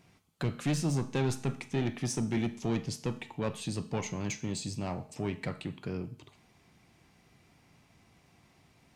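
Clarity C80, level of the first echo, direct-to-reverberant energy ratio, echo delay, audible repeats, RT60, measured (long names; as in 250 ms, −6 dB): 19.0 dB, no echo audible, 11.5 dB, no echo audible, no echo audible, 0.60 s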